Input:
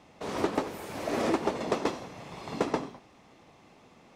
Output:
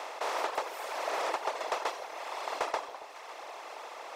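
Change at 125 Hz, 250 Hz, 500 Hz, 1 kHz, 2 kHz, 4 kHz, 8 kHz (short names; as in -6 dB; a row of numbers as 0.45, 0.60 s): under -25 dB, -20.0 dB, -4.5 dB, +2.0 dB, +2.0 dB, +1.5 dB, +0.5 dB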